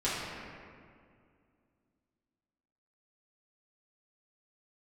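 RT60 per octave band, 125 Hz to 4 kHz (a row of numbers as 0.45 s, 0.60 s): 2.7 s, 3.0 s, 2.3 s, 2.0 s, 1.8 s, 1.2 s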